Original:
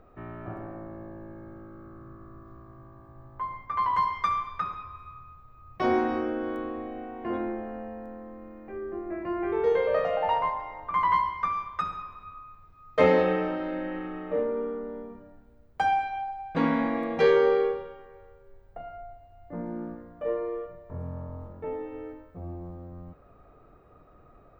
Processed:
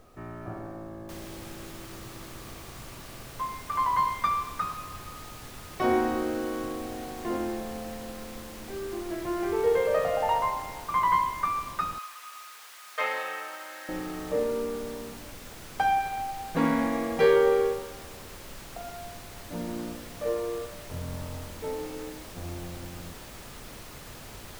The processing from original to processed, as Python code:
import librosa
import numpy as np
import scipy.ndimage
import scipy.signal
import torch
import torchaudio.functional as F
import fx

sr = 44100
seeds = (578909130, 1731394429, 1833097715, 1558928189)

y = fx.noise_floor_step(x, sr, seeds[0], at_s=1.09, before_db=-64, after_db=-44, tilt_db=3.0)
y = fx.cheby1_highpass(y, sr, hz=1300.0, order=2, at=(11.98, 13.89))